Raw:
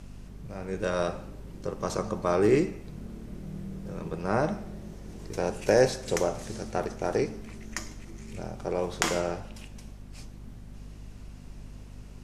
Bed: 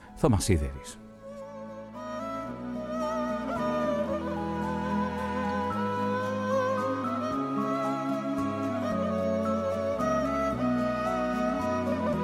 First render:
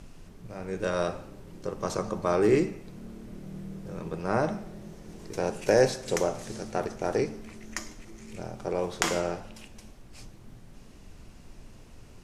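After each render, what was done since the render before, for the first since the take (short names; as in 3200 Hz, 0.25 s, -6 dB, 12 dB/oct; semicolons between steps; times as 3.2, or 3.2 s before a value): notches 50/100/150/200/250 Hz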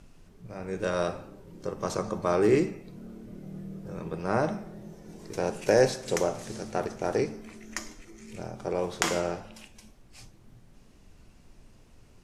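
noise print and reduce 6 dB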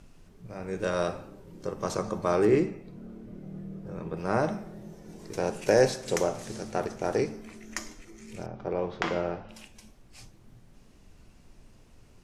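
2.45–4.17 high shelf 3800 Hz -9.5 dB; 8.46–9.49 air absorption 260 m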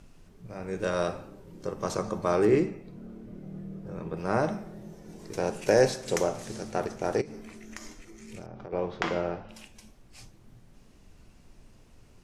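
7.21–8.73 compressor 16:1, threshold -36 dBFS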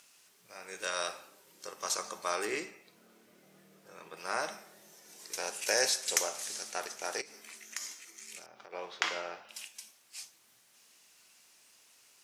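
HPF 1400 Hz 6 dB/oct; tilt +3 dB/oct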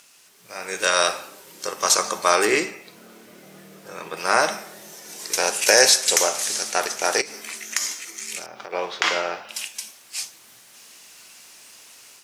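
AGC gain up to 7 dB; maximiser +8.5 dB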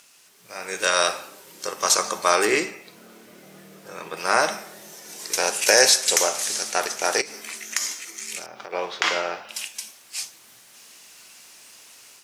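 gain -1 dB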